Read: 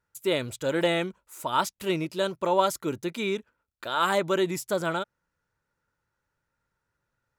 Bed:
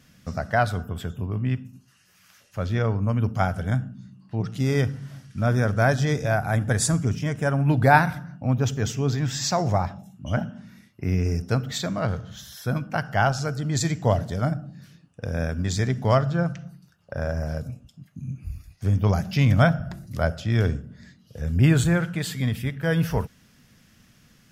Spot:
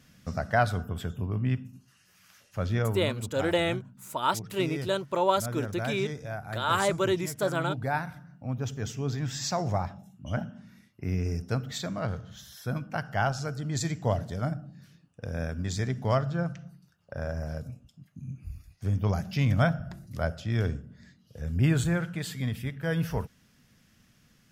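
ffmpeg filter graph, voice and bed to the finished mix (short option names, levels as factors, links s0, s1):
-filter_complex "[0:a]adelay=2700,volume=0.841[s0];[1:a]volume=1.78,afade=t=out:st=2.72:d=0.47:silence=0.281838,afade=t=in:st=8.06:d=1.27:silence=0.421697[s1];[s0][s1]amix=inputs=2:normalize=0"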